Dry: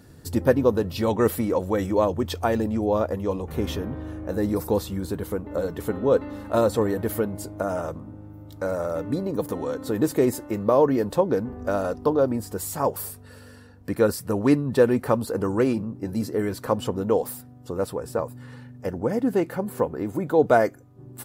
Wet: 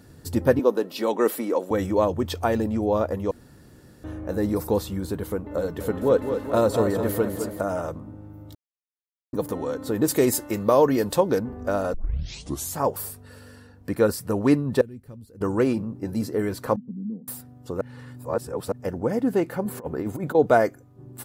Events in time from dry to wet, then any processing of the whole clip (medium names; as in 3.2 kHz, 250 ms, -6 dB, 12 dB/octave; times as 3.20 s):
0.59–1.71 s: high-pass 250 Hz 24 dB/octave
3.31–4.04 s: room tone
5.60–7.61 s: modulated delay 209 ms, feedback 60%, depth 59 cents, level -8 dB
8.55–9.33 s: mute
10.08–11.39 s: treble shelf 2.2 kHz +10 dB
11.94 s: tape start 0.81 s
14.81–15.41 s: amplifier tone stack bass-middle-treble 10-0-1
16.76–17.28 s: Butterworth band-pass 200 Hz, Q 3
17.81–18.72 s: reverse
19.65–20.35 s: compressor with a negative ratio -28 dBFS, ratio -0.5